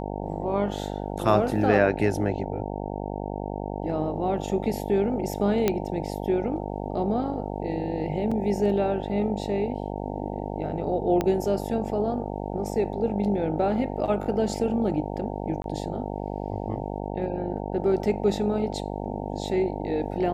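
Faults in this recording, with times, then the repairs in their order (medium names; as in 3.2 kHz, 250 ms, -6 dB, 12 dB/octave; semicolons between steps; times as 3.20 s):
buzz 50 Hz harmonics 18 -32 dBFS
5.68 s: pop -8 dBFS
8.31–8.32 s: dropout 5.6 ms
11.21 s: pop -12 dBFS
15.62–15.64 s: dropout 22 ms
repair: de-click; de-hum 50 Hz, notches 18; interpolate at 8.31 s, 5.6 ms; interpolate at 15.62 s, 22 ms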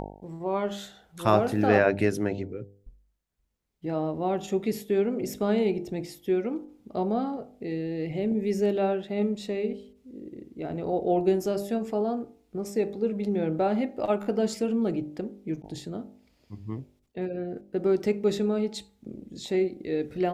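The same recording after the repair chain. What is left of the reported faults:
11.21 s: pop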